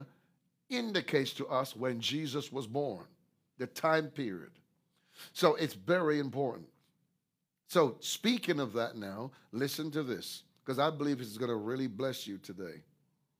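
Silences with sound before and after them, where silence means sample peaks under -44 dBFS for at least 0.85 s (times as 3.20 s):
6.64–7.70 s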